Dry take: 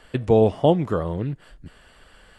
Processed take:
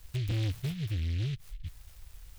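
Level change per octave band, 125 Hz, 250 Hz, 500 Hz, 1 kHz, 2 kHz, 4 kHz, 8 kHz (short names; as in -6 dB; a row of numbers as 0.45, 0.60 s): -4.5 dB, -16.5 dB, -29.5 dB, under -25 dB, -5.5 dB, -3.5 dB, n/a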